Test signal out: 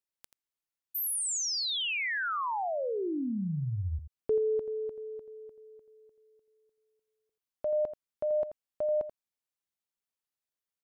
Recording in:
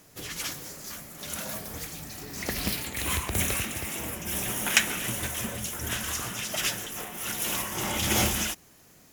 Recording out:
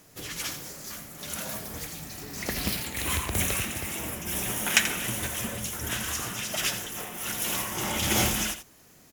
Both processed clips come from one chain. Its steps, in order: echo 84 ms -11 dB

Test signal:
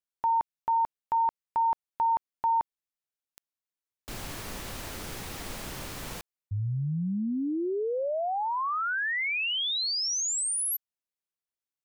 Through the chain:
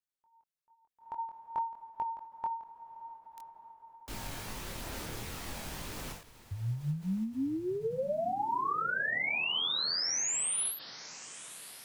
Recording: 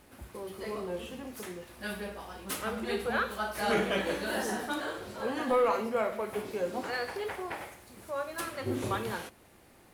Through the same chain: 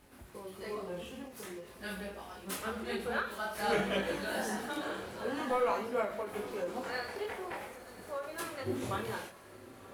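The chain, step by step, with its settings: chorus voices 2, 0.5 Hz, delay 23 ms, depth 3.6 ms; diffused feedback echo 1.012 s, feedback 48%, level -16 dB; ending taper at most 120 dB/s

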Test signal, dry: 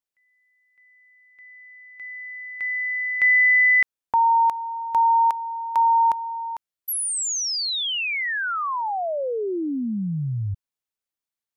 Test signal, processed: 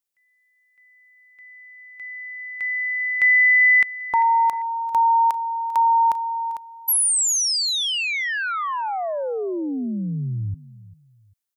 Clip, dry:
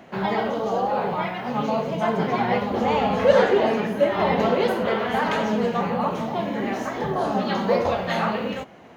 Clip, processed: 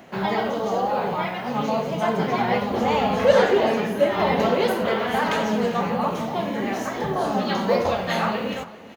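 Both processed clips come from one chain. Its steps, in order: high shelf 5600 Hz +8.5 dB; on a send: feedback echo 0.395 s, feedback 28%, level -18 dB

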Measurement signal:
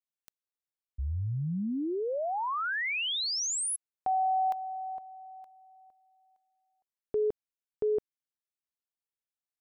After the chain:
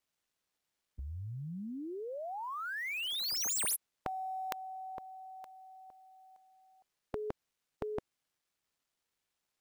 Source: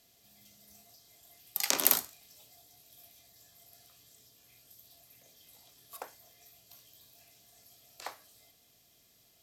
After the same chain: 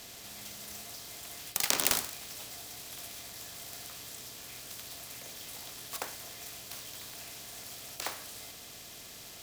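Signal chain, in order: median filter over 3 samples; spectral compressor 2:1; gain +3.5 dB

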